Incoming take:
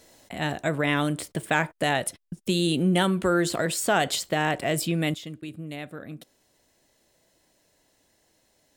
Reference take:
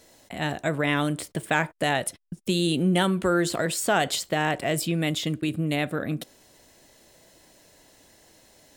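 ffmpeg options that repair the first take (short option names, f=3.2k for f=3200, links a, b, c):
-af "asetnsamples=n=441:p=0,asendcmd='5.14 volume volume 10.5dB',volume=0dB"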